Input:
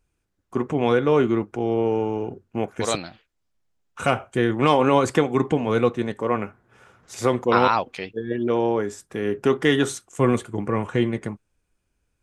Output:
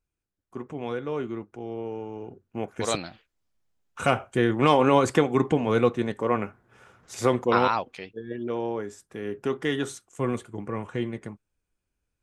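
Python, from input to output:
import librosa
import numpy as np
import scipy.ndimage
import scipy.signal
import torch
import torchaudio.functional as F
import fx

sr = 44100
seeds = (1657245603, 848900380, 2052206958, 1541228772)

y = fx.gain(x, sr, db=fx.line((2.07, -12.0), (3.01, -1.5), (7.35, -1.5), (8.11, -8.0)))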